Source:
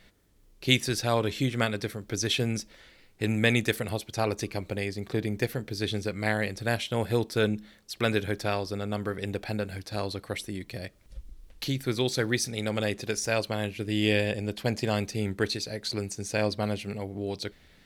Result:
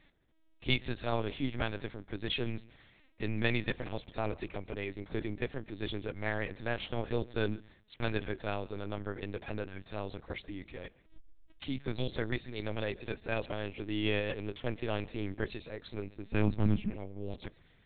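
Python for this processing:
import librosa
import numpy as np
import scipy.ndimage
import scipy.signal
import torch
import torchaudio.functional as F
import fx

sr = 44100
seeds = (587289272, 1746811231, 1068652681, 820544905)

y = fx.low_shelf_res(x, sr, hz=260.0, db=8.0, q=3.0, at=(16.27, 16.89))
y = fx.echo_feedback(y, sr, ms=139, feedback_pct=27, wet_db=-23.0)
y = fx.lpc_vocoder(y, sr, seeds[0], excitation='pitch_kept', order=8)
y = y * 10.0 ** (-6.5 / 20.0)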